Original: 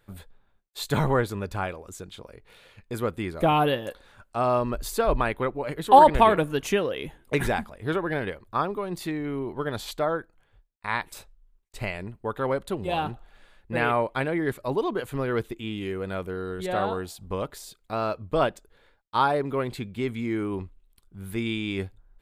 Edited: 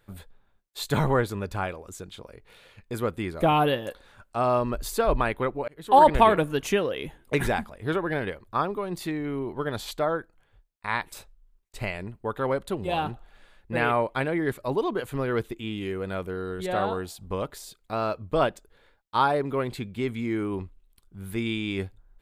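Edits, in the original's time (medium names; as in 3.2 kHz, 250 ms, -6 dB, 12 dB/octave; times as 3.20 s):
5.68–6.08 s: fade in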